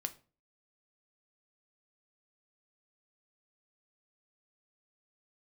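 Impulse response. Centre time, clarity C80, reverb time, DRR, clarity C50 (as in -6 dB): 5 ms, 22.5 dB, 0.40 s, 8.0 dB, 17.5 dB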